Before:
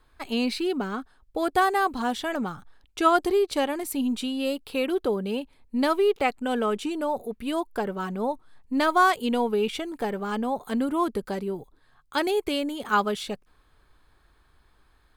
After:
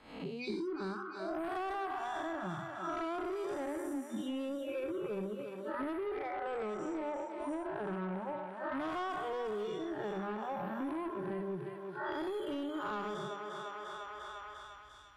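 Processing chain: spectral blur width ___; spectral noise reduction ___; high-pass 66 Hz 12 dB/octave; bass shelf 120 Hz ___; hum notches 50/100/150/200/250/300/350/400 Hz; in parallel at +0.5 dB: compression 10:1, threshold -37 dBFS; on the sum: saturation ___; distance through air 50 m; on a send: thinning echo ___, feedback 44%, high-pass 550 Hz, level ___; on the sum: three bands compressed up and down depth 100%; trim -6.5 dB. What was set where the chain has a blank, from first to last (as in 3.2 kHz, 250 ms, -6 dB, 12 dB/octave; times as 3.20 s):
268 ms, 30 dB, +6 dB, -26.5 dBFS, 349 ms, -9 dB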